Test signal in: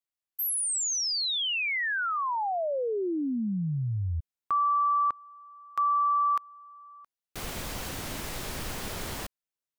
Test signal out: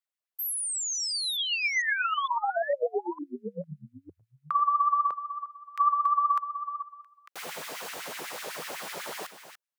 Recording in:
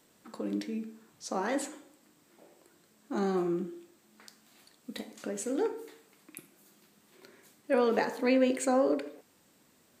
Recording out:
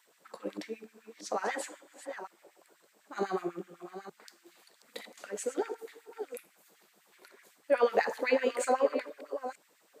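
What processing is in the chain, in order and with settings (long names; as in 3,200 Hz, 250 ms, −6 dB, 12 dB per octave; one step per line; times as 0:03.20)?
delay that plays each chunk backwards 455 ms, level −10.5 dB
auto-filter high-pass sine 8 Hz 430–2,100 Hz
parametric band 160 Hz +14 dB 0.79 octaves
level −2.5 dB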